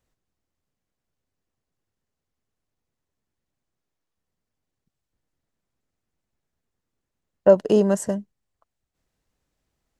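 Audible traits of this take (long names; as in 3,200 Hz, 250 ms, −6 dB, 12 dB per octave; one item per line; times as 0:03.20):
background noise floor −84 dBFS
spectral slope −6.5 dB per octave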